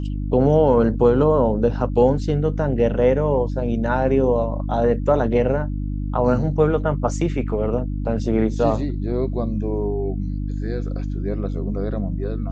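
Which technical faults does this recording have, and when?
mains hum 50 Hz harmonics 6 −25 dBFS

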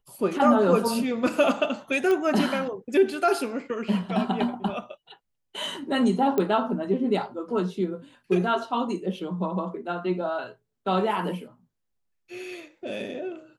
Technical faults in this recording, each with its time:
0:02.11: click −15 dBFS
0:06.38: click −13 dBFS

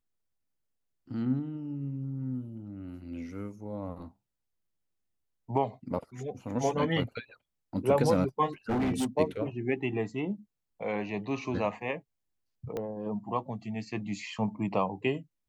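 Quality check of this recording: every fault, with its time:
0:08.69–0:09.06: clipping −25.5 dBFS
0:12.77: click −22 dBFS

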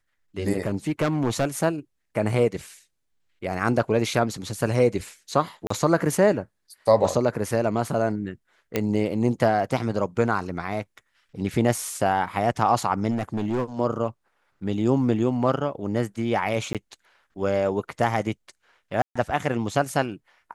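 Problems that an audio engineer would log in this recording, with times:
0:00.66–0:01.45: clipping −18 dBFS
0:05.67–0:05.70: drop-out 34 ms
0:08.76: click −9 dBFS
0:13.10–0:13.64: clipping −21 dBFS
0:16.73–0:16.75: drop-out 17 ms
0:19.02–0:19.16: drop-out 135 ms

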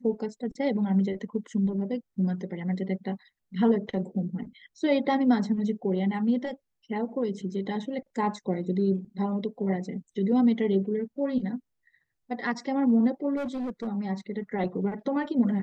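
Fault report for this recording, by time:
0:13.36–0:13.88: clipping −28.5 dBFS

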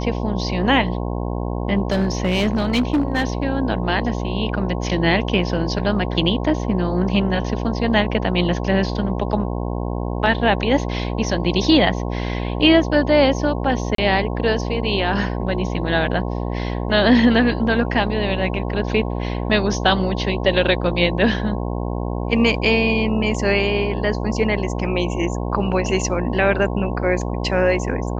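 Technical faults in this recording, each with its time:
mains buzz 60 Hz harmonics 18 −24 dBFS
0:01.91–0:03.25: clipping −13.5 dBFS
0:13.95–0:13.98: drop-out 33 ms

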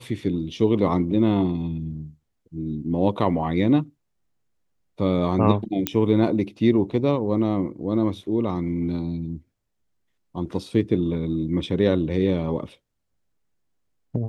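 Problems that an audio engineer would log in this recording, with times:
0:05.87: click −4 dBFS

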